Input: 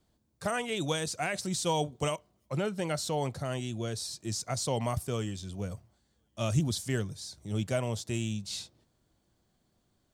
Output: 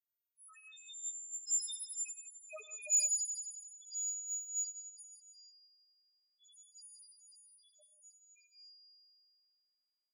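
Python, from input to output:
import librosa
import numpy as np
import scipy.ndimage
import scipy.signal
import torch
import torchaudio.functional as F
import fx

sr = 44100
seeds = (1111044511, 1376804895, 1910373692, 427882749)

p1 = fx.freq_snap(x, sr, grid_st=6)
p2 = fx.doppler_pass(p1, sr, speed_mps=10, closest_m=4.1, pass_at_s=2.63)
p3 = fx.highpass(p2, sr, hz=710.0, slope=6)
p4 = fx.high_shelf(p3, sr, hz=4300.0, db=6.5)
p5 = fx.echo_wet_highpass(p4, sr, ms=86, feedback_pct=80, hz=2300.0, wet_db=-5.0)
p6 = fx.spec_topn(p5, sr, count=1)
p7 = 10.0 ** (-34.5 / 20.0) * np.tanh(p6 / 10.0 ** (-34.5 / 20.0))
p8 = p6 + F.gain(torch.from_numpy(p7), -12.0).numpy()
p9 = fx.rev_gated(p8, sr, seeds[0], gate_ms=200, shape='rising', drr_db=10.0)
y = fx.upward_expand(p9, sr, threshold_db=-45.0, expansion=1.5)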